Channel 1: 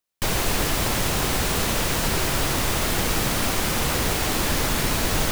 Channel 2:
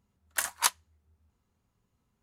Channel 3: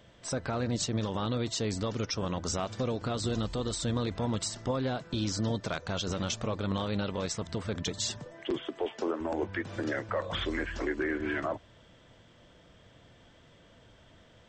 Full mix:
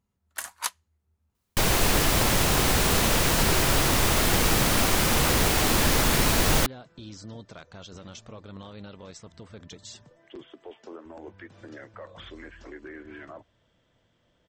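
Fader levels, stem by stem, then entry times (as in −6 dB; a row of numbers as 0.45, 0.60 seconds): +1.0, −4.5, −11.0 decibels; 1.35, 0.00, 1.85 seconds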